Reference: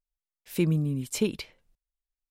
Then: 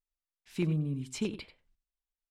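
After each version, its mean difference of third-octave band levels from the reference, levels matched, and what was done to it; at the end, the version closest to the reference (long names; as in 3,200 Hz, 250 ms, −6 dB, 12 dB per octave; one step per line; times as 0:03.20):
3.5 dB: high-shelf EQ 7,000 Hz +8.5 dB
auto-filter notch square 1.6 Hz 520–6,100 Hz
high-frequency loss of the air 96 metres
on a send: single-tap delay 90 ms −14 dB
on the sum: level −5 dB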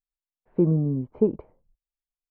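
9.0 dB: low-pass filter 1,000 Hz 24 dB per octave
notch filter 560 Hz, Q 17
noise reduction from a noise print of the clip's start 10 dB
dynamic equaliser 610 Hz, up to +7 dB, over −41 dBFS, Q 0.79
level +2 dB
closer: first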